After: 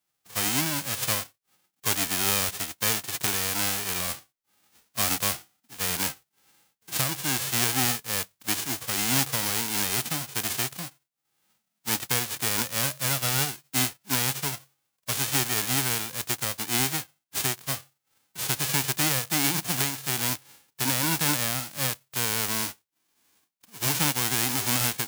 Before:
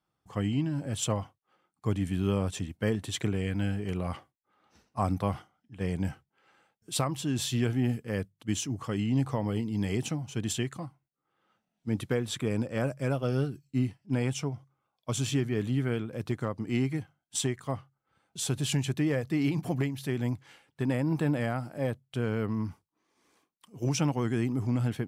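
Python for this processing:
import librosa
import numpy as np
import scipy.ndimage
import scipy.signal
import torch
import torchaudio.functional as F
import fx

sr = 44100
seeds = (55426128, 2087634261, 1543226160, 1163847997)

y = fx.envelope_flatten(x, sr, power=0.1)
y = F.gain(torch.from_numpy(y), 2.5).numpy()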